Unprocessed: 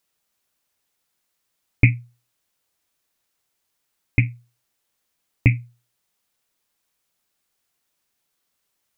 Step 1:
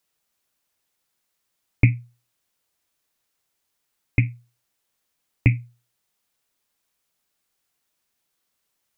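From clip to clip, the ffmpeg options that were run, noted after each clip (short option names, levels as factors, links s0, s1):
-filter_complex "[0:a]acrossover=split=450[s0][s1];[s1]acompressor=threshold=0.0891:ratio=6[s2];[s0][s2]amix=inputs=2:normalize=0,volume=0.891"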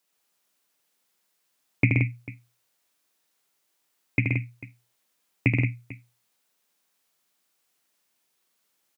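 -af "highpass=170,aecho=1:1:77|126|150|175|445:0.562|0.562|0.119|0.447|0.119"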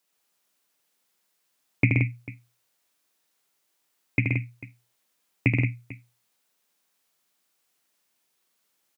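-af anull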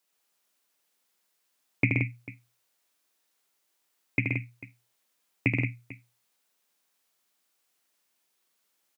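-af "lowshelf=f=110:g=-9.5,volume=0.841"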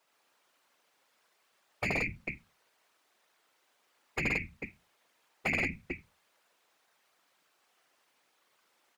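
-filter_complex "[0:a]asplit=2[s0][s1];[s1]highpass=f=720:p=1,volume=20,asoftclip=type=tanh:threshold=0.447[s2];[s0][s2]amix=inputs=2:normalize=0,lowpass=f=1100:p=1,volume=0.501,afftfilt=real='re*lt(hypot(re,im),0.355)':imag='im*lt(hypot(re,im),0.355)':win_size=1024:overlap=0.75,afftfilt=real='hypot(re,im)*cos(2*PI*random(0))':imag='hypot(re,im)*sin(2*PI*random(1))':win_size=512:overlap=0.75,volume=1.19"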